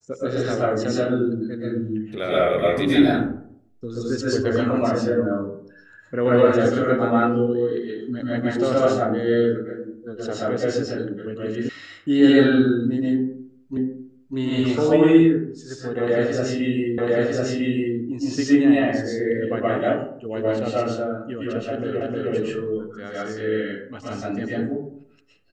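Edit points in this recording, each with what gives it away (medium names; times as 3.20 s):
11.69 s: sound stops dead
13.77 s: repeat of the last 0.6 s
16.98 s: repeat of the last 1 s
22.01 s: repeat of the last 0.31 s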